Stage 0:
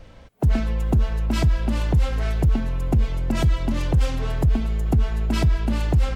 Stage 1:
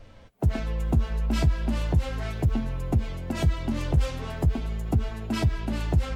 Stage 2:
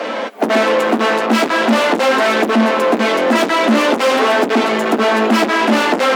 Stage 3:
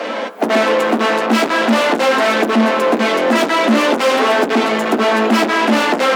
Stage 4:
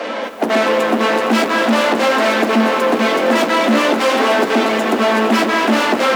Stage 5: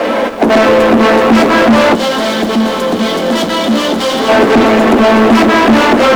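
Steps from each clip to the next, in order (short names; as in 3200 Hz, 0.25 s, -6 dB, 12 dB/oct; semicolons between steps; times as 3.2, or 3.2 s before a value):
flange 0.38 Hz, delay 8.7 ms, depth 5.2 ms, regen -31%
overdrive pedal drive 38 dB, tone 1500 Hz, clips at -12 dBFS; elliptic high-pass 220 Hz, stop band 40 dB; gain +9 dB
de-hum 64.09 Hz, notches 27
lo-fi delay 0.231 s, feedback 80%, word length 6-bit, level -11 dB; gain -1 dB
tilt -2 dB/oct; spectral gain 1.94–4.29, 200–2900 Hz -10 dB; sample leveller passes 3; gain -1.5 dB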